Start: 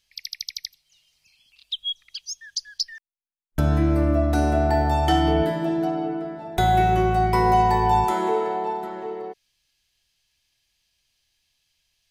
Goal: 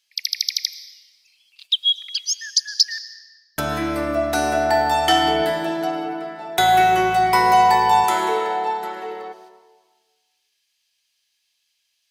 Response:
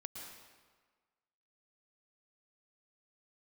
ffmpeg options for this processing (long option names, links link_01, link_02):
-filter_complex "[0:a]agate=range=-9dB:threshold=-55dB:ratio=16:detection=peak,highpass=frequency=1400:poles=1,asplit=2[link_01][link_02];[1:a]atrim=start_sample=2205[link_03];[link_02][link_03]afir=irnorm=-1:irlink=0,volume=-4dB[link_04];[link_01][link_04]amix=inputs=2:normalize=0,volume=8dB"